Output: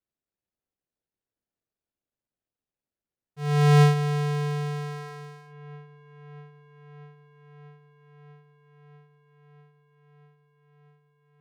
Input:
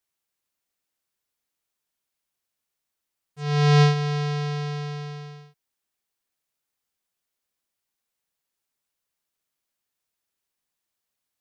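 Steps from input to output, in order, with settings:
running median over 41 samples
delay with a low-pass on its return 642 ms, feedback 80%, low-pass 2,300 Hz, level −22 dB

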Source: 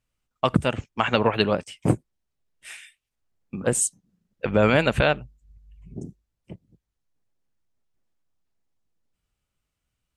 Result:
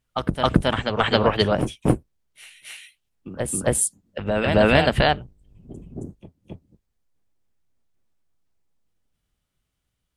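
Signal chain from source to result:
sub-octave generator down 1 octave, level −6 dB
formants moved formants +2 semitones
backwards echo 270 ms −6 dB
level +1.5 dB

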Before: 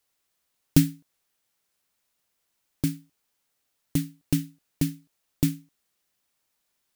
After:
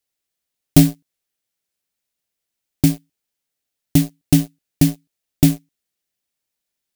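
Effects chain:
leveller curve on the samples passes 3
parametric band 1,100 Hz −6.5 dB 0.95 octaves
level +1.5 dB

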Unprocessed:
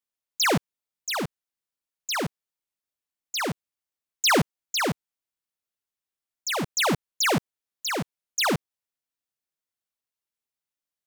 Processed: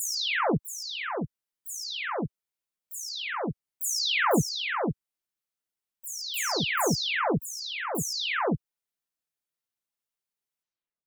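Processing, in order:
every frequency bin delayed by itself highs early, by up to 431 ms

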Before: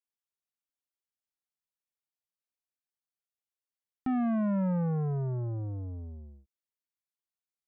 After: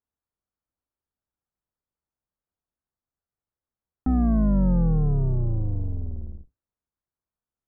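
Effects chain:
sub-octave generator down 2 octaves, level 0 dB
low-pass filter 1,500 Hz 24 dB per octave
low-shelf EQ 320 Hz +7 dB
in parallel at +1 dB: downward compressor, threshold −37 dBFS, peak gain reduction 17.5 dB
on the sum: level −1 dB

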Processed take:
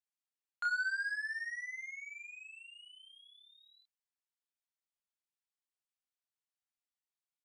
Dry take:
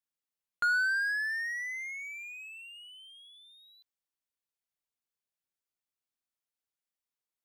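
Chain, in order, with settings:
elliptic band-pass filter 730–9,200 Hz
double-tracking delay 30 ms −3 dB
level −7.5 dB

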